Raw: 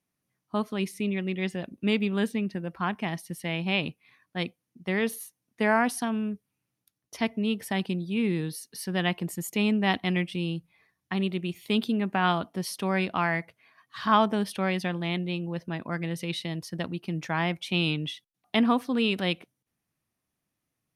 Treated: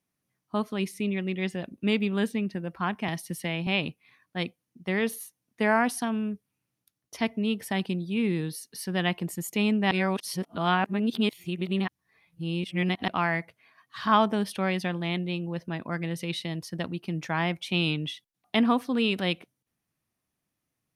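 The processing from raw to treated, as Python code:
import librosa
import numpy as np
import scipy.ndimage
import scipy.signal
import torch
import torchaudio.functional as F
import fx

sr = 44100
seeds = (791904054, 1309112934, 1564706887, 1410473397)

y = fx.band_squash(x, sr, depth_pct=70, at=(3.08, 3.67))
y = fx.edit(y, sr, fx.reverse_span(start_s=9.91, length_s=3.17), tone=tone)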